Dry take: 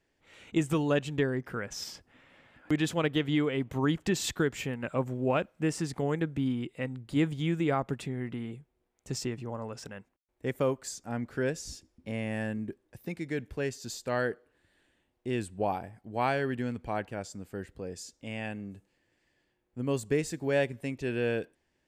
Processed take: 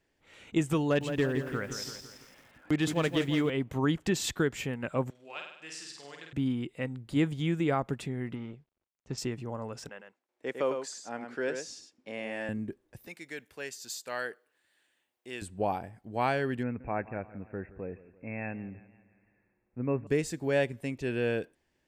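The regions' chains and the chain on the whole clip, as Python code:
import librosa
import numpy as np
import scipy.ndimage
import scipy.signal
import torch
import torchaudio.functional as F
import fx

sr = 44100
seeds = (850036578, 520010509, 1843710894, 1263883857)

y = fx.chain(x, sr, fx.overload_stage(gain_db=19.5),
    fx.echo_crushed(ms=168, feedback_pct=55, bits=9, wet_db=-8.5), at=(0.84, 3.5))
y = fx.chain(y, sr, fx.bandpass_q(hz=4200.0, q=1.3),
    fx.room_flutter(wall_m=8.5, rt60_s=0.74), at=(5.1, 6.33))
y = fx.chain(y, sr, fx.law_mismatch(coded='A'),
    fx.air_absorb(metres=150.0), at=(8.35, 9.18))
y = fx.chain(y, sr, fx.bandpass_edges(low_hz=360.0, high_hz=6900.0),
    fx.echo_single(ms=104, db=-6.5), at=(9.89, 12.49))
y = fx.chain(y, sr, fx.highpass(hz=1200.0, slope=6),
    fx.high_shelf(hz=11000.0, db=7.5), at=(13.07, 15.42))
y = fx.chain(y, sr, fx.brickwall_lowpass(high_hz=2700.0),
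    fx.echo_warbled(ms=170, feedback_pct=51, rate_hz=2.8, cents=66, wet_db=-18.0), at=(16.63, 20.07))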